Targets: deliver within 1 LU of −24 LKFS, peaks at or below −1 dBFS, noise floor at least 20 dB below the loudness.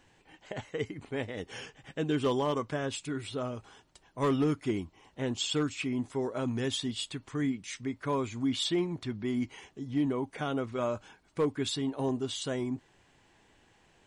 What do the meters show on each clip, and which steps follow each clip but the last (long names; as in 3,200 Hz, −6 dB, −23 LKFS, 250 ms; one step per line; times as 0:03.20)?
share of clipped samples 0.3%; peaks flattened at −21.5 dBFS; integrated loudness −33.0 LKFS; sample peak −21.5 dBFS; target loudness −24.0 LKFS
→ clipped peaks rebuilt −21.5 dBFS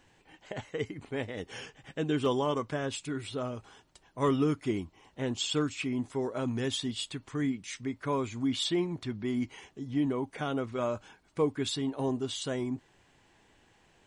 share of clipped samples 0.0%; integrated loudness −33.0 LKFS; sample peak −16.0 dBFS; target loudness −24.0 LKFS
→ level +9 dB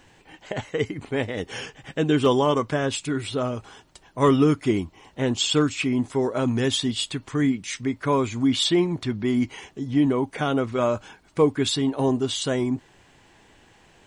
integrated loudness −24.0 LKFS; sample peak −7.0 dBFS; background noise floor −57 dBFS